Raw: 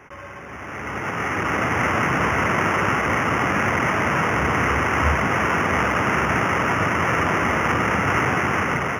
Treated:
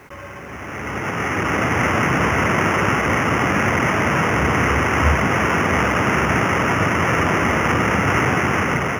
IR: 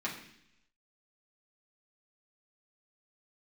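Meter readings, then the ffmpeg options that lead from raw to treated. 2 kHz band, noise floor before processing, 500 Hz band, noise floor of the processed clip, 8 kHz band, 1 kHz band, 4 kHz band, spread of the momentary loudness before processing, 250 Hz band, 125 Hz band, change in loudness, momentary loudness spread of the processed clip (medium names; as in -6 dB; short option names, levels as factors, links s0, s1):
+2.0 dB, -36 dBFS, +3.0 dB, -34 dBFS, +4.5 dB, +1.5 dB, +3.5 dB, 7 LU, +4.0 dB, +4.5 dB, +2.5 dB, 7 LU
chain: -af "equalizer=f=1200:w=0.64:g=-3.5,acrusher=bits=9:mix=0:aa=0.000001,volume=1.68"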